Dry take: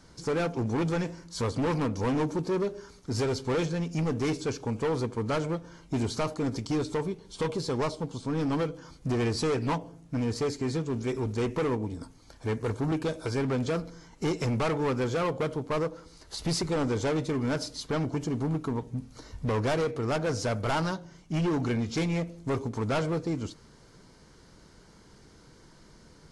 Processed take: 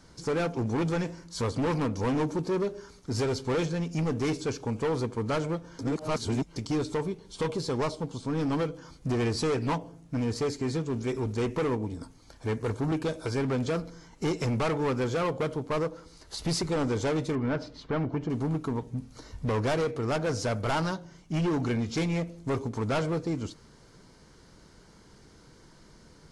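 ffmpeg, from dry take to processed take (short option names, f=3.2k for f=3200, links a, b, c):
-filter_complex "[0:a]asettb=1/sr,asplit=3[a][b][c];[a]atrim=end=17.354[d];[b]atrim=start=17.35:end=18.3,asetpts=PTS-STARTPTS,afade=t=in:d=0.004:c=qsin,afade=t=out:st=0.946:d=0.004:c=qsin,lowpass=2.6k[e];[c]atrim=start=18.296[f];[d][e]acrossfade=d=0.004:c1=hsin:c2=qsin[g];[g][f]acrossfade=d=0.004:c1=qsin:c2=hsin,asplit=3[h][i][j];[h]atrim=end=5.792[k];[i]atrim=start=5.788:end=6.562,asetpts=PTS-STARTPTS,areverse[l];[j]atrim=start=6.558[m];[k][l]acrossfade=d=0.004:c1=hsin:c2=hsin[n];[n][m]acrossfade=d=0.004:c1=hsin:c2=hsin"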